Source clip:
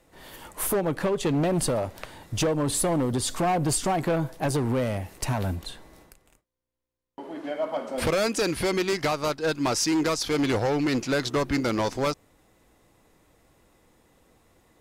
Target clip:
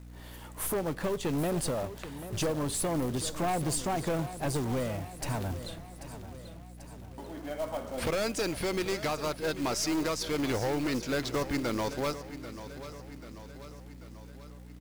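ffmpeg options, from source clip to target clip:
-filter_complex "[0:a]aeval=exprs='val(0)+0.00891*(sin(2*PI*60*n/s)+sin(2*PI*2*60*n/s)/2+sin(2*PI*3*60*n/s)/3+sin(2*PI*4*60*n/s)/4+sin(2*PI*5*60*n/s)/5)':c=same,aecho=1:1:789|1578|2367|3156|3945:0.211|0.114|0.0616|0.0333|0.018,asplit=2[a][b];[b]aeval=exprs='clip(val(0),-1,0.00944)':c=same,volume=-5.5dB[c];[a][c]amix=inputs=2:normalize=0,acrusher=bits=4:mode=log:mix=0:aa=0.000001,volume=-8.5dB"

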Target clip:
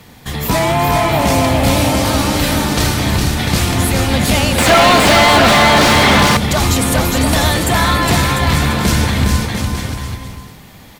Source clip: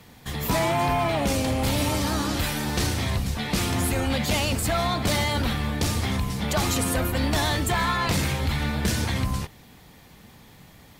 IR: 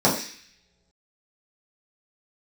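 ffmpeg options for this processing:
-filter_complex "[0:a]aecho=1:1:410|697|897.9|1039|1137:0.631|0.398|0.251|0.158|0.1,asettb=1/sr,asplit=3[a][b][c];[a]atrim=end=4.584[d];[b]atrim=start=4.58:end=6.37,asetpts=PTS-STARTPTS,afade=t=in:d=0.004:c=qsin,afade=t=out:st=1.786:d=0.004:c=qsin,asplit=2[e][f];[f]highpass=f=720:p=1,volume=29dB,asoftclip=type=tanh:threshold=-9dB[g];[e][g]amix=inputs=2:normalize=0,lowpass=f=2.2k:p=1,volume=-6dB[h];[c]atrim=start=6.366[i];[d][h]acrossfade=d=0.004:c1=hsin:c2=qsin[j];[j][i]acrossfade=d=0.004:c1=qsin:c2=hsin,volume=8.5dB"

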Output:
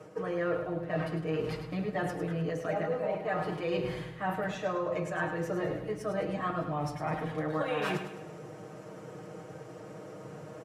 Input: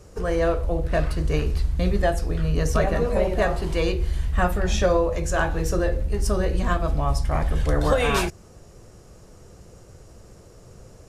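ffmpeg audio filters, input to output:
-filter_complex "[0:a]highpass=f=73:w=0.5412,highpass=f=73:w=1.3066,acrossover=split=150 2800:gain=0.141 1 0.178[a][b][c];[a][b][c]amix=inputs=3:normalize=0,aecho=1:1:6.7:0.98,areverse,acompressor=threshold=-35dB:ratio=5,areverse,aecho=1:1:108|216|324|432|540:0.355|0.16|0.0718|0.0323|0.0145,asetrate=45938,aresample=44100,volume=3.5dB"

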